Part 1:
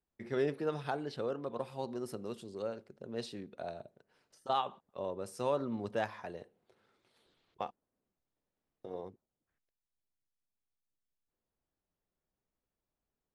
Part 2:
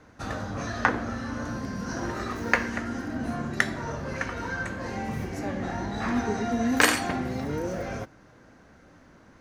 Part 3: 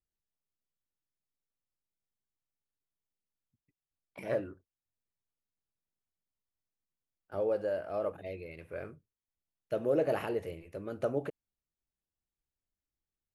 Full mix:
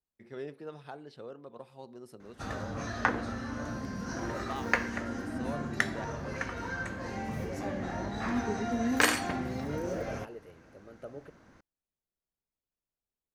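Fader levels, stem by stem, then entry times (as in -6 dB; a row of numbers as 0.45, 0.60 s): -8.5, -4.5, -12.0 dB; 0.00, 2.20, 0.00 s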